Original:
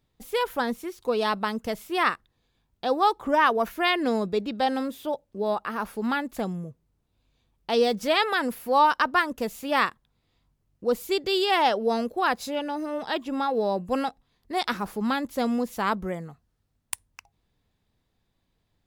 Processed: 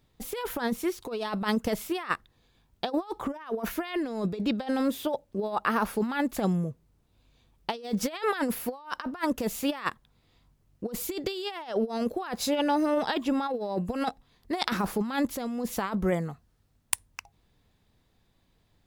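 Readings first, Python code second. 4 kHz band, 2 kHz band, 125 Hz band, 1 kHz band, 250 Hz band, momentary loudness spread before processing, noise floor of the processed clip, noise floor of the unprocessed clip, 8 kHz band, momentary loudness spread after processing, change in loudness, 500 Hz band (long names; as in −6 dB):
−6.0 dB, −7.0 dB, +4.5 dB, −8.0 dB, +0.5 dB, 11 LU, −69 dBFS, −75 dBFS, +4.5 dB, 8 LU, −4.5 dB, −4.5 dB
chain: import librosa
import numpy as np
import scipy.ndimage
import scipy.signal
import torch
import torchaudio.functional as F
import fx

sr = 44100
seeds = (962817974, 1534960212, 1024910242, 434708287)

y = fx.over_compress(x, sr, threshold_db=-29.0, ratio=-0.5)
y = y * librosa.db_to_amplitude(1.0)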